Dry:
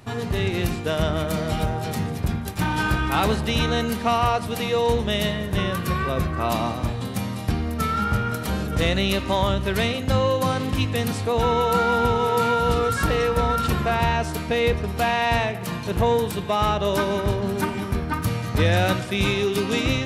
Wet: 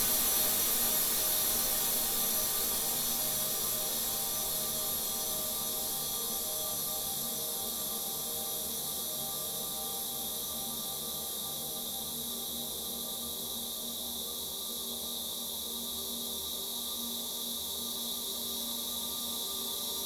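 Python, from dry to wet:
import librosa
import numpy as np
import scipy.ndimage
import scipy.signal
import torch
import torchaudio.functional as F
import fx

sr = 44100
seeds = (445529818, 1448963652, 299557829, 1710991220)

p1 = fx.brickwall_bandstop(x, sr, low_hz=1200.0, high_hz=3200.0)
p2 = fx.over_compress(p1, sr, threshold_db=-27.0, ratio=-0.5)
p3 = np.diff(p2, prepend=0.0)
p4 = p3 + fx.echo_single(p3, sr, ms=1191, db=-6.0, dry=0)
p5 = fx.rev_gated(p4, sr, seeds[0], gate_ms=270, shape='rising', drr_db=-8.0)
p6 = fx.cheby_harmonics(p5, sr, harmonics=(4,), levels_db=(-12,), full_scale_db=-11.5)
y = fx.paulstretch(p6, sr, seeds[1], factor=47.0, window_s=0.5, from_s=8.76)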